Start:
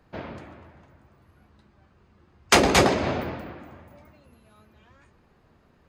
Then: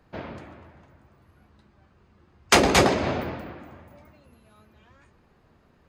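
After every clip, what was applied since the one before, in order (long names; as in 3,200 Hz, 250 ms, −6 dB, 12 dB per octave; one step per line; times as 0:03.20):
no processing that can be heard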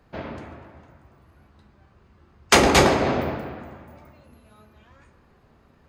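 dense smooth reverb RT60 1.3 s, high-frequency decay 0.4×, DRR 5.5 dB
level +1.5 dB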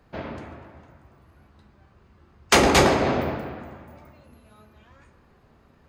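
soft clipping −6 dBFS, distortion −20 dB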